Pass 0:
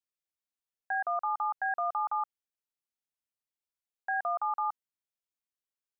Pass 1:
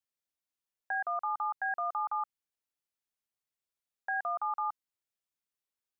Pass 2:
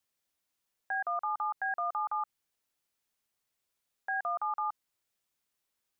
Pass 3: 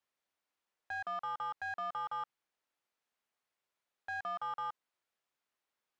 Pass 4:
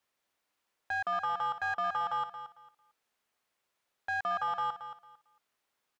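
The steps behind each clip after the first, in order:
dynamic bell 610 Hz, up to -4 dB, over -46 dBFS, Q 0.96
peak limiter -34.5 dBFS, peak gain reduction 10 dB; trim +8.5 dB
overdrive pedal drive 15 dB, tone 1.3 kHz, clips at -25.5 dBFS; trim -5.5 dB
feedback delay 225 ms, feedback 22%, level -11 dB; trim +6.5 dB

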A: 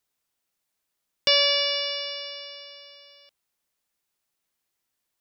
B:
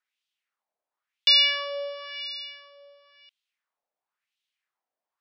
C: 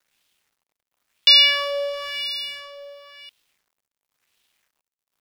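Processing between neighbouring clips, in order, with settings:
wah-wah 0.96 Hz 630–3300 Hz, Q 2.6; trim +5.5 dB
companding laws mixed up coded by mu; trim +5.5 dB

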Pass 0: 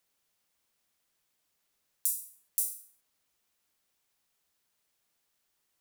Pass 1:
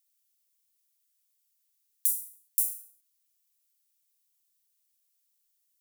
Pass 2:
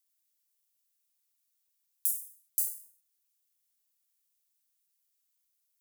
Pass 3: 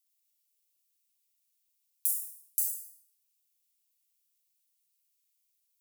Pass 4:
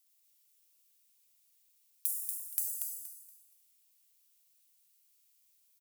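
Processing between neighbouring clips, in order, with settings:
differentiator
spectral replace 2.13–3.08 s, 2.5–5.1 kHz after; ring modulator with a swept carrier 540 Hz, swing 70%, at 0.76 Hz
steep high-pass 2.1 kHz; on a send at -1.5 dB: reverberation RT60 1.8 s, pre-delay 31 ms
compression 6:1, threshold -36 dBFS, peak gain reduction 12 dB; on a send: feedback delay 236 ms, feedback 27%, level -5.5 dB; on the sum: trim +6 dB

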